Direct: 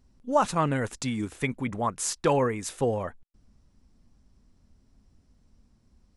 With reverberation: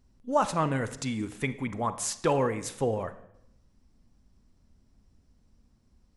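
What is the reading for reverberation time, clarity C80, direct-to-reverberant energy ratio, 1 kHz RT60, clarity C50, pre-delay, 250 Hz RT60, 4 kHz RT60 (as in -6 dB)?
0.75 s, 16.5 dB, 12.0 dB, 0.75 s, 13.5 dB, 34 ms, 0.90 s, 0.70 s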